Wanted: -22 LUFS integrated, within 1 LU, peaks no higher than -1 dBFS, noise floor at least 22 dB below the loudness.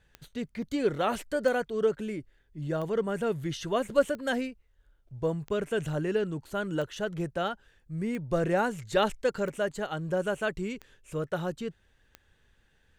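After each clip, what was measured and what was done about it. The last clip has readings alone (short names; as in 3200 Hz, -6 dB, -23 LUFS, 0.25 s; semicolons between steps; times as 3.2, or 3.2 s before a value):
clicks 10; loudness -31.0 LUFS; peak -10.5 dBFS; loudness target -22.0 LUFS
-> de-click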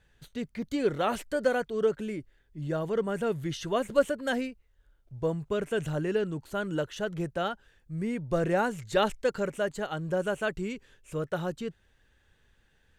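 clicks 0; loudness -31.0 LUFS; peak -10.5 dBFS; loudness target -22.0 LUFS
-> gain +9 dB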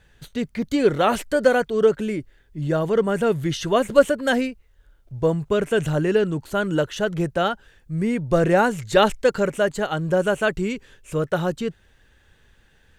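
loudness -22.0 LUFS; peak -1.5 dBFS; noise floor -58 dBFS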